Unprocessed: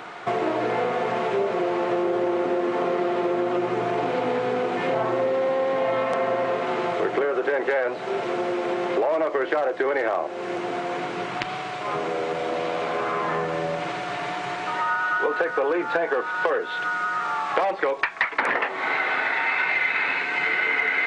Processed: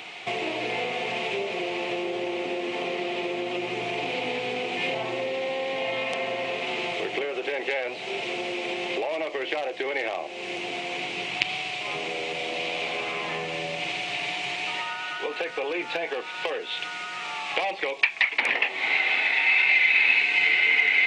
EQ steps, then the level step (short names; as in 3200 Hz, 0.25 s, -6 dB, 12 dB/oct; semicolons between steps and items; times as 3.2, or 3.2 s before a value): bell 780 Hz +4.5 dB 0.24 oct; resonant high shelf 1900 Hz +9.5 dB, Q 3; -6.5 dB